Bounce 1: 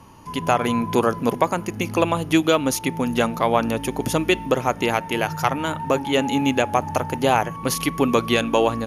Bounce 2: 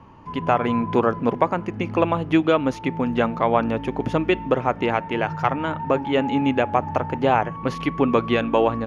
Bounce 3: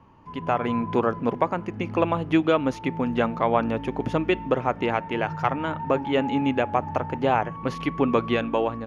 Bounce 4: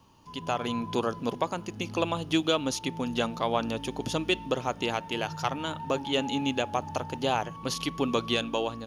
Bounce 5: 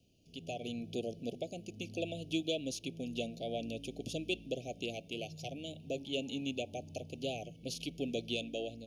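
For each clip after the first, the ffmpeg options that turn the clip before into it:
-af "lowpass=2.3k"
-af "dynaudnorm=f=110:g=9:m=11.5dB,volume=-7dB"
-af "aexciter=amount=5.1:drive=8.6:freq=3.1k,volume=-6dB"
-af "asuperstop=centerf=1300:order=20:qfactor=0.82,volume=-9dB"

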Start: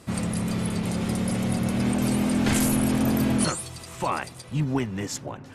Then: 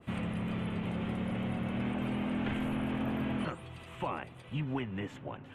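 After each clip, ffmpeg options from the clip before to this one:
-filter_complex "[0:a]highshelf=f=3.9k:t=q:w=3:g=-8.5,acrossover=split=680|3400[a][b][c];[a]acompressor=threshold=-25dB:ratio=4[d];[b]acompressor=threshold=-31dB:ratio=4[e];[c]acompressor=threshold=-54dB:ratio=4[f];[d][e][f]amix=inputs=3:normalize=0,adynamicequalizer=threshold=0.00562:dfrequency=2000:dqfactor=0.7:tfrequency=2000:tqfactor=0.7:attack=5:release=100:ratio=0.375:range=2.5:mode=cutabove:tftype=highshelf,volume=-6.5dB"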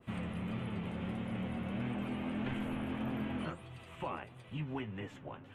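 -af "flanger=delay=7.5:depth=6:regen=52:speed=1.6:shape=triangular"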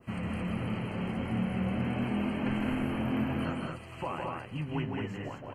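-filter_complex "[0:a]asuperstop=centerf=3600:order=12:qfactor=4.4,asplit=2[a][b];[b]aecho=0:1:160.3|218.7:0.631|0.708[c];[a][c]amix=inputs=2:normalize=0,volume=3.5dB"

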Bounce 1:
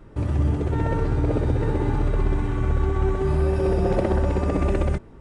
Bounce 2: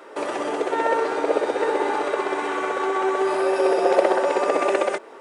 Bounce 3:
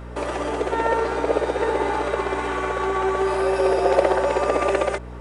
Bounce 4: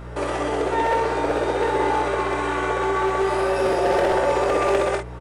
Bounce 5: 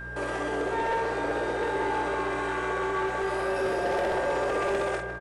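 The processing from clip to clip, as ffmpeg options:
-filter_complex "[0:a]highpass=f=440:w=0.5412,highpass=f=440:w=1.3066,asplit=2[a][b];[b]acompressor=threshold=-38dB:ratio=6,volume=0.5dB[c];[a][c]amix=inputs=2:normalize=0,volume=7dB"
-af "aeval=exprs='val(0)+0.0178*(sin(2*PI*60*n/s)+sin(2*PI*2*60*n/s)/2+sin(2*PI*3*60*n/s)/3+sin(2*PI*4*60*n/s)/4+sin(2*PI*5*60*n/s)/5)':c=same"
-filter_complex "[0:a]volume=16.5dB,asoftclip=hard,volume=-16.5dB,asplit=2[a][b];[b]aecho=0:1:23|48:0.447|0.501[c];[a][c]amix=inputs=2:normalize=0"
-filter_complex "[0:a]asplit=2[a][b];[b]adelay=156,lowpass=f=2.8k:p=1,volume=-10dB,asplit=2[c][d];[d]adelay=156,lowpass=f=2.8k:p=1,volume=0.54,asplit=2[e][f];[f]adelay=156,lowpass=f=2.8k:p=1,volume=0.54,asplit=2[g][h];[h]adelay=156,lowpass=f=2.8k:p=1,volume=0.54,asplit=2[i][j];[j]adelay=156,lowpass=f=2.8k:p=1,volume=0.54,asplit=2[k][l];[l]adelay=156,lowpass=f=2.8k:p=1,volume=0.54[m];[a][c][e][g][i][k][m]amix=inputs=7:normalize=0,asoftclip=type=tanh:threshold=-15dB,aeval=exprs='val(0)+0.0282*sin(2*PI*1600*n/s)':c=same,volume=-6dB"

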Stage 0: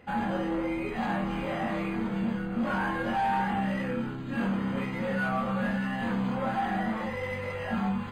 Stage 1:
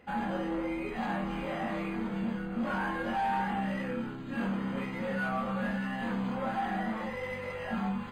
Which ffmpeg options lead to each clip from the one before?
-af "equalizer=f=110:t=o:w=0.4:g=-10.5,volume=-3dB"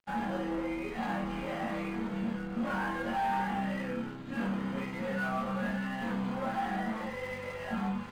-af "aeval=exprs='sgn(val(0))*max(abs(val(0))-0.00266,0)':c=same"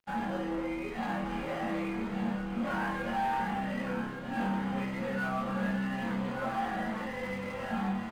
-af "aecho=1:1:1169:0.422"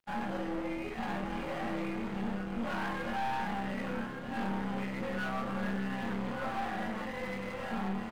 -af "aeval=exprs='(tanh(39.8*val(0)+0.65)-tanh(0.65))/39.8':c=same,volume=2dB"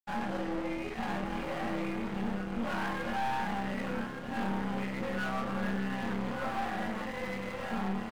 -af "aeval=exprs='sgn(val(0))*max(abs(val(0))-0.00178,0)':c=same,volume=2dB"

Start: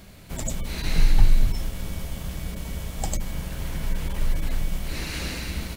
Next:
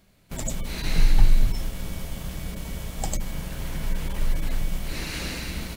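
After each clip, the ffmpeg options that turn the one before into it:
-af "agate=range=-13dB:threshold=-34dB:ratio=16:detection=peak,equalizer=f=74:t=o:w=0.43:g=-6"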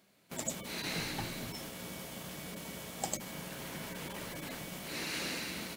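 -af "highpass=220,volume=-4dB"

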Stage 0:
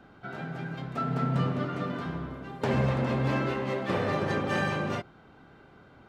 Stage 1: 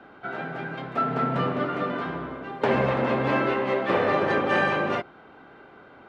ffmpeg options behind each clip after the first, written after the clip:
-filter_complex "[0:a]acrossover=split=260 3600:gain=0.224 1 0.178[a][b][c];[a][b][c]amix=inputs=3:normalize=0,volume=7.5dB"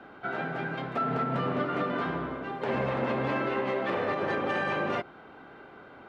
-af "alimiter=limit=-20dB:level=0:latency=1:release=179"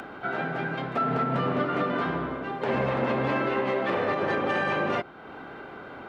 -af "acompressor=mode=upward:threshold=-37dB:ratio=2.5,volume=3dB"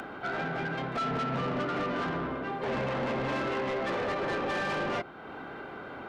-af "asoftclip=type=tanh:threshold=-27.5dB"

